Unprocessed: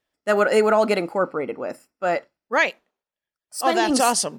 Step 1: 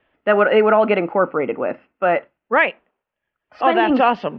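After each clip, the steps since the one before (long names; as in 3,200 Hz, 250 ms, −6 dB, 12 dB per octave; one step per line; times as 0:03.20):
elliptic low-pass filter 2,900 Hz, stop band 70 dB
multiband upward and downward compressor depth 40%
level +4.5 dB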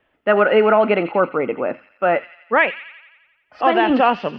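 delay with a high-pass on its return 87 ms, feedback 61%, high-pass 3,000 Hz, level −7 dB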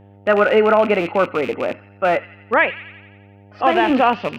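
loose part that buzzes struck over −32 dBFS, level −19 dBFS
hum with harmonics 100 Hz, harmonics 9, −46 dBFS −5 dB per octave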